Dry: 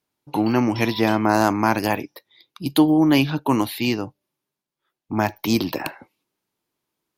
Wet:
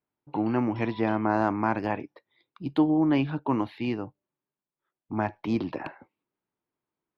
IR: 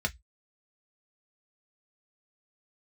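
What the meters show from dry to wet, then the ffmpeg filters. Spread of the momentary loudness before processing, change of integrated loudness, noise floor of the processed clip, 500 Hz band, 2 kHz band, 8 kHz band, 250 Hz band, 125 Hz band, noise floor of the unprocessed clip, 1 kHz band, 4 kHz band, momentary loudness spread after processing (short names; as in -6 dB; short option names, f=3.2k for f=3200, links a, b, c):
12 LU, -7.0 dB, under -85 dBFS, -6.5 dB, -9.0 dB, under -25 dB, -6.5 dB, -6.5 dB, -85 dBFS, -6.5 dB, -16.5 dB, 12 LU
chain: -af "lowpass=2k,volume=-6.5dB"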